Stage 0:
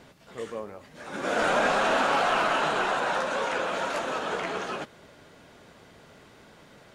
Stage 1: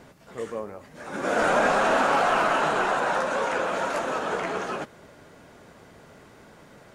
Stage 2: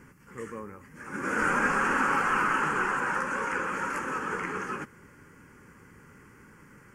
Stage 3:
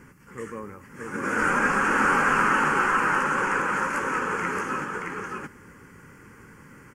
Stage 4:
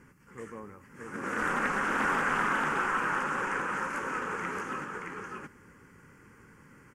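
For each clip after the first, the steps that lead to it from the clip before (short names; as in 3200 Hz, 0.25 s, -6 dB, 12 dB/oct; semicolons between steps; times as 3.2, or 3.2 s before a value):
bell 3500 Hz -6 dB 1.2 oct; gain +3 dB
fixed phaser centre 1600 Hz, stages 4
echo 0.624 s -3 dB; gain +3 dB
Doppler distortion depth 0.32 ms; gain -7 dB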